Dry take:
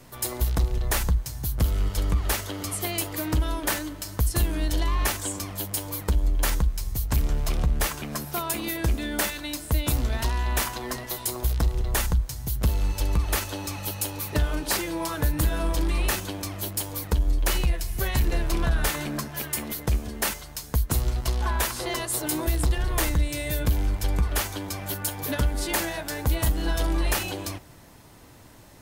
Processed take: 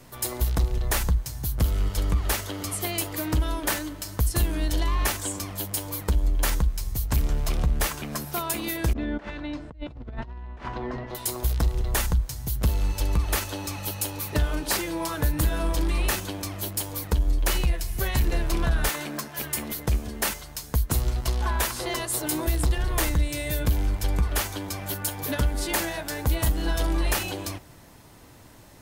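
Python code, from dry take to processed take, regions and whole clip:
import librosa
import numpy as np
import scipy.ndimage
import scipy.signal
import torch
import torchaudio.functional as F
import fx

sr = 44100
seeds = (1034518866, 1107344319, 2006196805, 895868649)

y = fx.chain(x, sr, fx.over_compress(threshold_db=-30.0, ratio=-0.5),
    fx.spacing_loss(db_at_10k=41), at=(8.93, 11.15))
y = fx.chain(y, sr, fx.highpass(hz=300.0, slope=6),
    fx.overflow_wrap(gain_db=19.0), at=(18.89, 19.39))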